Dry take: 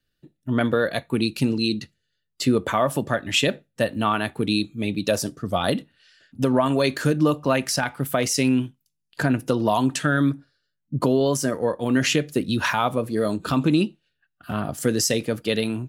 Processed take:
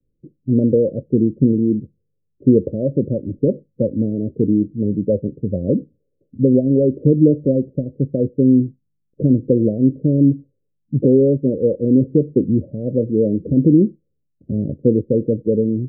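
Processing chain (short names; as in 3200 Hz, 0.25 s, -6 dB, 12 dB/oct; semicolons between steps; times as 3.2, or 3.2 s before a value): steep low-pass 550 Hz 96 dB/oct; 4.7–5.62 dynamic EQ 300 Hz, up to -4 dB, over -43 dBFS, Q 5.3; gain +7.5 dB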